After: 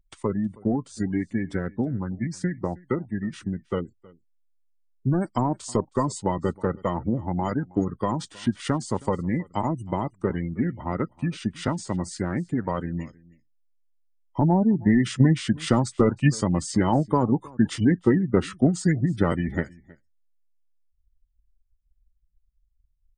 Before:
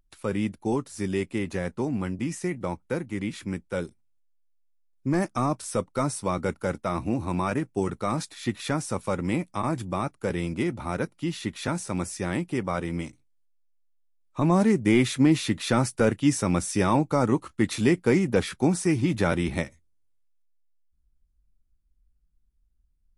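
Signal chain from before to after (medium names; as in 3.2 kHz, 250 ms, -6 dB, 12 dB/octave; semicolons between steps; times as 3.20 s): formant shift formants -3 st; spectral gate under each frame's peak -25 dB strong; transient shaper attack +5 dB, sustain -2 dB; on a send: delay 318 ms -23.5 dB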